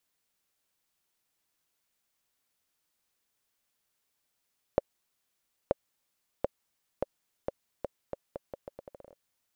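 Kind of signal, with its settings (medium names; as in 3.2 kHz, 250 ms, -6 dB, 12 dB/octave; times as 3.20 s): bouncing ball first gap 0.93 s, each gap 0.79, 556 Hz, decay 23 ms -10 dBFS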